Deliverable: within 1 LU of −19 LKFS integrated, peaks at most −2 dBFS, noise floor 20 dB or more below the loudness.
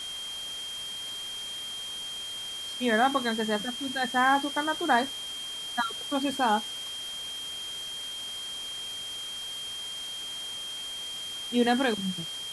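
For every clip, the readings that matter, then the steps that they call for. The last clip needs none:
interfering tone 3,200 Hz; level of the tone −35 dBFS; background noise floor −37 dBFS; target noise floor −50 dBFS; integrated loudness −30.0 LKFS; sample peak −11.0 dBFS; target loudness −19.0 LKFS
→ notch filter 3,200 Hz, Q 30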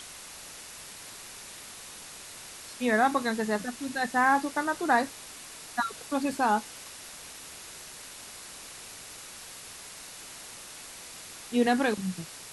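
interfering tone none found; background noise floor −45 dBFS; target noise floor −48 dBFS
→ broadband denoise 6 dB, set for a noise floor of −45 dBFS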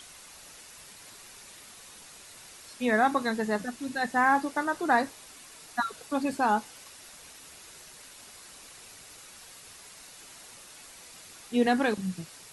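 background noise floor −50 dBFS; integrated loudness −28.0 LKFS; sample peak −11.5 dBFS; target loudness −19.0 LKFS
→ level +9 dB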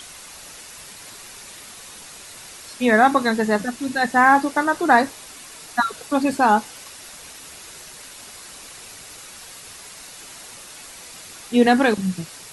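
integrated loudness −19.0 LKFS; sample peak −2.5 dBFS; background noise floor −41 dBFS

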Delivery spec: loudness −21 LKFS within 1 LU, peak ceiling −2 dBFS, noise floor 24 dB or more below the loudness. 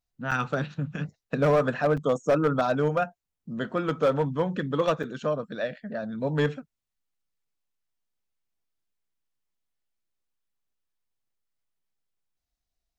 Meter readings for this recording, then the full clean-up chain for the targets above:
share of clipped samples 0.4%; peaks flattened at −16.0 dBFS; number of dropouts 3; longest dropout 5.3 ms; integrated loudness −27.0 LKFS; sample peak −16.0 dBFS; target loudness −21.0 LKFS
→ clipped peaks rebuilt −16 dBFS
repair the gap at 0:00.31/0:01.97/0:05.03, 5.3 ms
level +6 dB

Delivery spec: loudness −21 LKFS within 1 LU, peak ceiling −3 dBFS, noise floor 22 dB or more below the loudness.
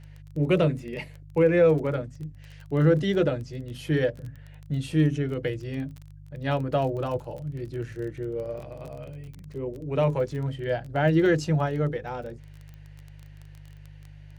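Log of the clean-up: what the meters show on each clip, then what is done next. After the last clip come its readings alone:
crackle rate 21 per second; mains hum 50 Hz; hum harmonics up to 150 Hz; level of the hum −41 dBFS; integrated loudness −26.5 LKFS; sample peak −10.0 dBFS; target loudness −21.0 LKFS
→ click removal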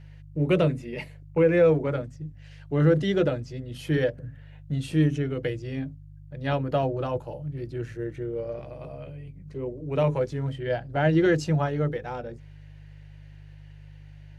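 crackle rate 0 per second; mains hum 50 Hz; hum harmonics up to 150 Hz; level of the hum −41 dBFS
→ hum removal 50 Hz, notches 3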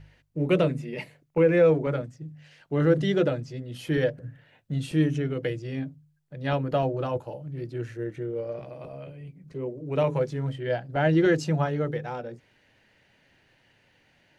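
mains hum none found; integrated loudness −27.0 LKFS; sample peak −9.5 dBFS; target loudness −21.0 LKFS
→ level +6 dB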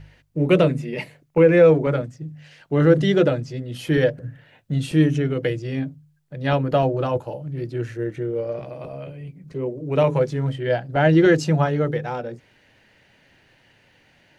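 integrated loudness −21.0 LKFS; sample peak −3.5 dBFS; background noise floor −58 dBFS

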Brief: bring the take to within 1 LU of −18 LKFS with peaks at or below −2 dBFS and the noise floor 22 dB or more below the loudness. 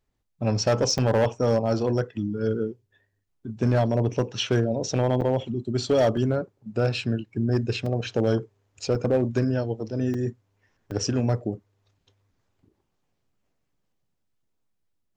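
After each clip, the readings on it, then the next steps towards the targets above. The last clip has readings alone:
share of clipped samples 1.0%; peaks flattened at −15.0 dBFS; number of dropouts 7; longest dropout 3.6 ms; integrated loudness −25.5 LKFS; sample peak −15.0 dBFS; target loudness −18.0 LKFS
→ clipped peaks rebuilt −15 dBFS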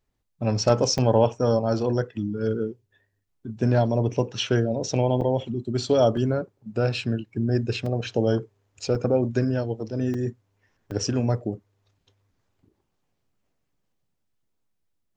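share of clipped samples 0.0%; number of dropouts 7; longest dropout 3.6 ms
→ repair the gap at 0:00.98/0:05.21/0:06.17/0:07.86/0:08.95/0:10.14/0:10.91, 3.6 ms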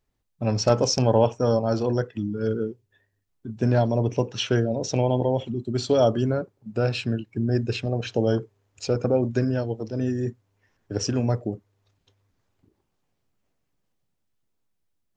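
number of dropouts 0; integrated loudness −25.0 LKFS; sample peak −6.0 dBFS; target loudness −18.0 LKFS
→ level +7 dB
brickwall limiter −2 dBFS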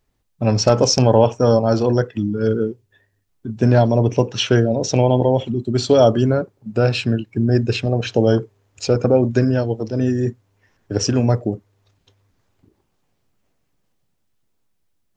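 integrated loudness −18.0 LKFS; sample peak −2.0 dBFS; background noise floor −68 dBFS

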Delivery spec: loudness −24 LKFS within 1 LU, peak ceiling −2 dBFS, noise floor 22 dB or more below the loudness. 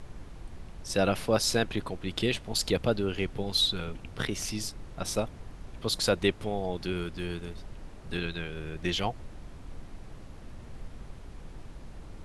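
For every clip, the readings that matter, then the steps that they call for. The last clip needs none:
background noise floor −46 dBFS; target noise floor −53 dBFS; integrated loudness −30.5 LKFS; sample peak −9.5 dBFS; target loudness −24.0 LKFS
→ noise reduction from a noise print 7 dB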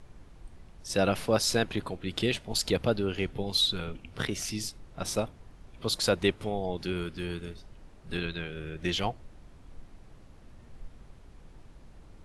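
background noise floor −53 dBFS; integrated loudness −30.5 LKFS; sample peak −9.5 dBFS; target loudness −24.0 LKFS
→ level +6.5 dB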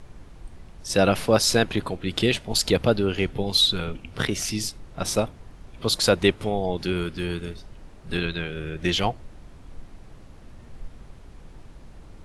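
integrated loudness −24.0 LKFS; sample peak −3.0 dBFS; background noise floor −46 dBFS

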